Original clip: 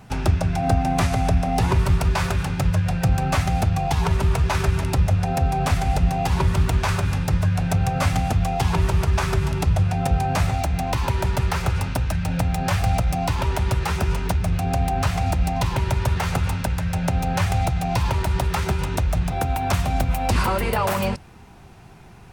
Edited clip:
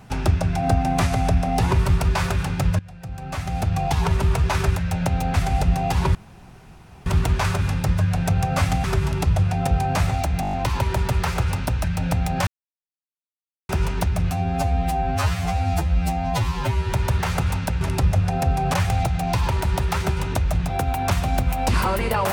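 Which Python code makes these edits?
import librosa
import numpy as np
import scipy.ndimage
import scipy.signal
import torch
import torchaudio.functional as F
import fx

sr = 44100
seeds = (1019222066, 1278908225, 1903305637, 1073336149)

y = fx.edit(x, sr, fx.fade_in_from(start_s=2.79, length_s=1.01, curve='qua', floor_db=-19.0),
    fx.swap(start_s=4.76, length_s=0.93, other_s=16.78, other_length_s=0.58),
    fx.insert_room_tone(at_s=6.5, length_s=0.91),
    fx.cut(start_s=8.28, length_s=0.96),
    fx.stutter(start_s=10.81, slice_s=0.02, count=7),
    fx.silence(start_s=12.75, length_s=1.22),
    fx.stretch_span(start_s=14.59, length_s=1.31, factor=2.0), tone=tone)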